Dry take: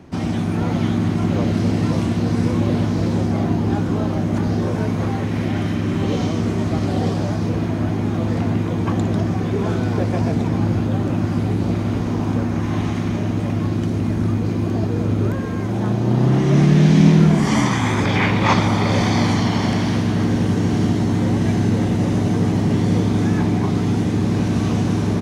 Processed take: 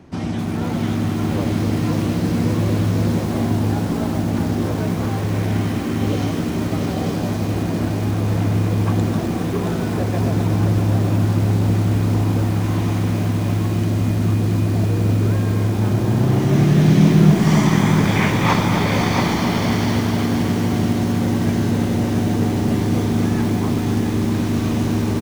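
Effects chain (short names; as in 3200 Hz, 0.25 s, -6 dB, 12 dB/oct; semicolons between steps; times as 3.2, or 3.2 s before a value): on a send: echo 0.675 s -6.5 dB; on the sum: lo-fi delay 0.257 s, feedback 80%, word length 5-bit, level -8 dB; gain -2 dB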